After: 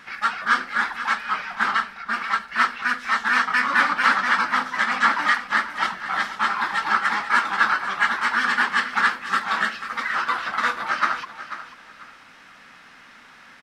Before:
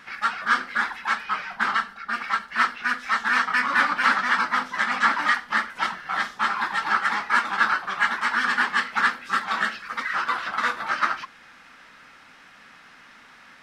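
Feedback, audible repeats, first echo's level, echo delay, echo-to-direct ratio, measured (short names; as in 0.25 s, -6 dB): 25%, 2, -12.5 dB, 0.49 s, -12.0 dB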